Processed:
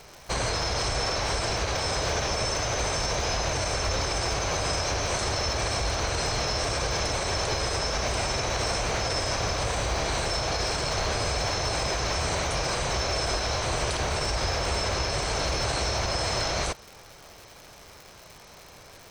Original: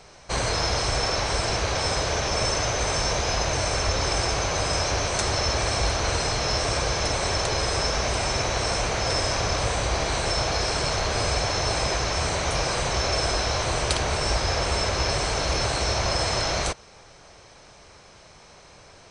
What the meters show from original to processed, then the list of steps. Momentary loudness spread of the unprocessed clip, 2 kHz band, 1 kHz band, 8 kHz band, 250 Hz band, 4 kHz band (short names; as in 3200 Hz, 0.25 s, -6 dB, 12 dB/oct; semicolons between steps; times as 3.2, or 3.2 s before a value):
1 LU, -2.5 dB, -2.5 dB, -2.5 dB, -2.5 dB, -2.5 dB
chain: crackle 290/s -37 dBFS; limiter -18 dBFS, peak gain reduction 9 dB